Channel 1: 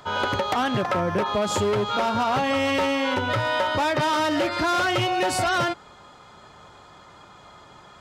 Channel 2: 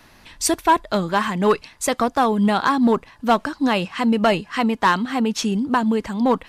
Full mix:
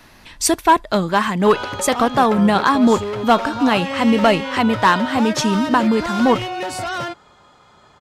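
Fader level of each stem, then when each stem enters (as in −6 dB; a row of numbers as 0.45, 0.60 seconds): −2.5, +3.0 decibels; 1.40, 0.00 seconds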